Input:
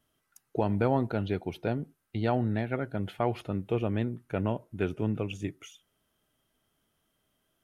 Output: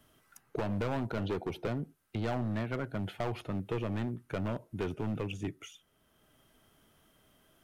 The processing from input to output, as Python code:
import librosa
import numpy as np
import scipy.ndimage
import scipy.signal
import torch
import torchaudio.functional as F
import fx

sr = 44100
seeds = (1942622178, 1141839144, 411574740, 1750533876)

y = fx.peak_eq(x, sr, hz=490.0, db=6.0, octaves=2.6, at=(1.17, 1.67))
y = np.clip(y, -10.0 ** (-27.5 / 20.0), 10.0 ** (-27.5 / 20.0))
y = fx.band_squash(y, sr, depth_pct=40)
y = y * librosa.db_to_amplitude(-1.5)